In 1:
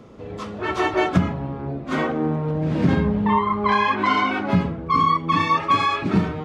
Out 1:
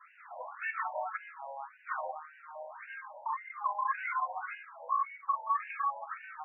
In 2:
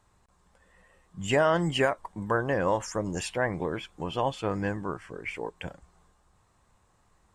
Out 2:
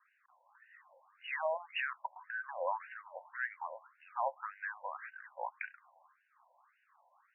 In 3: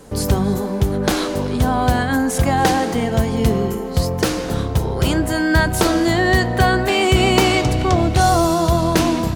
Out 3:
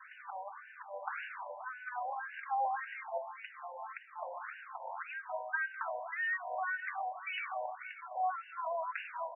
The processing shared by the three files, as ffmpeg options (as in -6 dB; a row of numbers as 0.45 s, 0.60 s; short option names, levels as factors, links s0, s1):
-af "acrusher=bits=8:mode=log:mix=0:aa=0.000001,acompressor=threshold=0.0282:ratio=6,adynamicequalizer=threshold=0.00398:dfrequency=390:dqfactor=1.1:tfrequency=390:tqfactor=1.1:attack=5:release=100:ratio=0.375:range=3:mode=cutabove:tftype=bell,afftfilt=real='re*between(b*sr/1024,710*pow(2100/710,0.5+0.5*sin(2*PI*1.8*pts/sr))/1.41,710*pow(2100/710,0.5+0.5*sin(2*PI*1.8*pts/sr))*1.41)':imag='im*between(b*sr/1024,710*pow(2100/710,0.5+0.5*sin(2*PI*1.8*pts/sr))/1.41,710*pow(2100/710,0.5+0.5*sin(2*PI*1.8*pts/sr))*1.41)':win_size=1024:overlap=0.75,volume=1.68"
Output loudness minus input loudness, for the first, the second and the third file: -15.5 LU, -11.0 LU, -22.0 LU